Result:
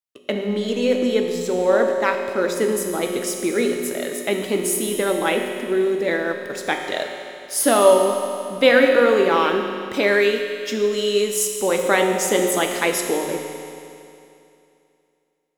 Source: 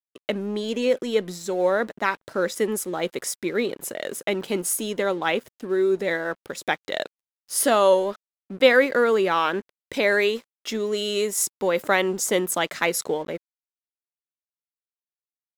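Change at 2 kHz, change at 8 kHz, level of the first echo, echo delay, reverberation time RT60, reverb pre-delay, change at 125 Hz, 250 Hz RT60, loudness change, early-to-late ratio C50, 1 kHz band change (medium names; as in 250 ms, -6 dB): +2.5 dB, +3.0 dB, no echo, no echo, 2.7 s, 6 ms, +3.5 dB, 2.7 s, +3.5 dB, 3.5 dB, +3.0 dB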